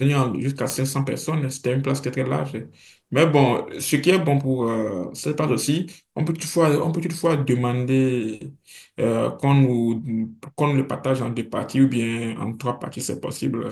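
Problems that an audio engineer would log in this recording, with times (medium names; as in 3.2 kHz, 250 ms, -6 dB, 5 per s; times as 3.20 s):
0.70 s: pop -7 dBFS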